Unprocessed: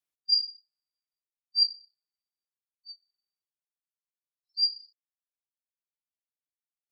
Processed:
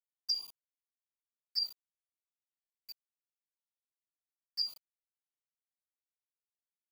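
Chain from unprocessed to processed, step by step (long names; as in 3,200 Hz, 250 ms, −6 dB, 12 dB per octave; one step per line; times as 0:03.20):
centre clipping without the shift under −41 dBFS
flanger swept by the level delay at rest 3.5 ms, full sweep at −25.5 dBFS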